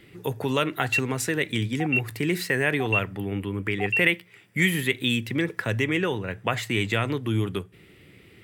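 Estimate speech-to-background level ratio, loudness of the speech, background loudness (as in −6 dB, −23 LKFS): 1.0 dB, −26.0 LKFS, −27.0 LKFS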